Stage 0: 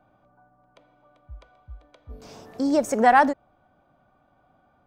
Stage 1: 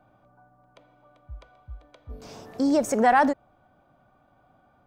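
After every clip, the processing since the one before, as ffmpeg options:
ffmpeg -i in.wav -filter_complex "[0:a]equalizer=frequency=120:width=6.5:gain=3.5,asplit=2[link_01][link_02];[link_02]alimiter=limit=-16.5dB:level=0:latency=1:release=17,volume=3dB[link_03];[link_01][link_03]amix=inputs=2:normalize=0,volume=-6.5dB" out.wav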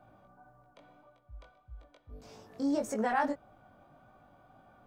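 ffmpeg -i in.wav -af "areverse,acompressor=mode=upward:threshold=-38dB:ratio=2.5,areverse,flanger=delay=18:depth=3.5:speed=1.7,volume=-7dB" out.wav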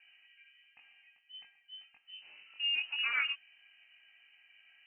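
ffmpeg -i in.wav -af "lowpass=frequency=2600:width_type=q:width=0.5098,lowpass=frequency=2600:width_type=q:width=0.6013,lowpass=frequency=2600:width_type=q:width=0.9,lowpass=frequency=2600:width_type=q:width=2.563,afreqshift=-3100,volume=-3dB" out.wav

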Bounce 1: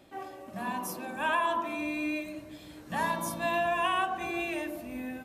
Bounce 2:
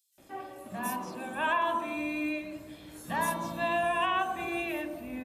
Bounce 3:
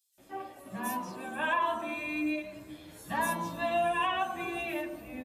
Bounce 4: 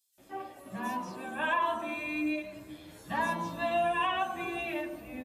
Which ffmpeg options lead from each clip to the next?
ffmpeg -i in.wav -filter_complex "[0:a]acrossover=split=5400[link_01][link_02];[link_01]adelay=180[link_03];[link_03][link_02]amix=inputs=2:normalize=0" out.wav
ffmpeg -i in.wav -filter_complex "[0:a]asplit=2[link_01][link_02];[link_02]adelay=9.7,afreqshift=2.1[link_03];[link_01][link_03]amix=inputs=2:normalize=1,volume=2dB" out.wav
ffmpeg -i in.wav -filter_complex "[0:a]acrossover=split=6100[link_01][link_02];[link_02]acompressor=threshold=-57dB:ratio=4:attack=1:release=60[link_03];[link_01][link_03]amix=inputs=2:normalize=0" out.wav

